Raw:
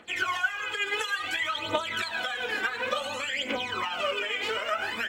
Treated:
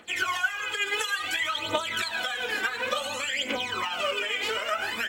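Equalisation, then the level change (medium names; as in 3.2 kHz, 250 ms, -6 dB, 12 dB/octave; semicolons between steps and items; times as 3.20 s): treble shelf 5.1 kHz +8.5 dB; 0.0 dB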